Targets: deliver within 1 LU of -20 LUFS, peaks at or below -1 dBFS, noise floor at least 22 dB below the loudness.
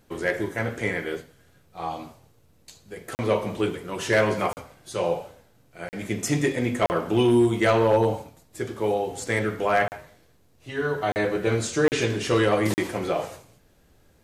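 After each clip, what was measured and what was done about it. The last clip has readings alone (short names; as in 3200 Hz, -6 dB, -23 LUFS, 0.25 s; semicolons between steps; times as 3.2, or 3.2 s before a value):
clipped 0.2%; flat tops at -12.5 dBFS; dropouts 8; longest dropout 39 ms; loudness -25.0 LUFS; peak -12.5 dBFS; loudness target -20.0 LUFS
-> clip repair -12.5 dBFS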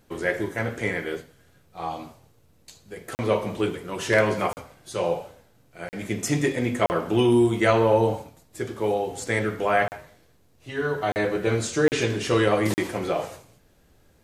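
clipped 0.0%; dropouts 8; longest dropout 39 ms
-> interpolate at 3.15/4.53/5.89/6.86/9.88/11.12/11.88/12.74, 39 ms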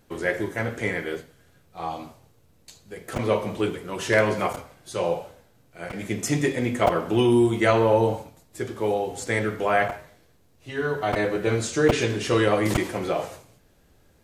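dropouts 0; loudness -24.5 LUFS; peak -4.5 dBFS; loudness target -20.0 LUFS
-> gain +4.5 dB; limiter -1 dBFS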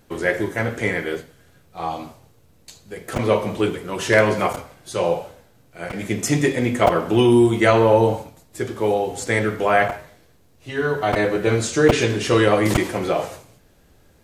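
loudness -20.0 LUFS; peak -1.0 dBFS; noise floor -55 dBFS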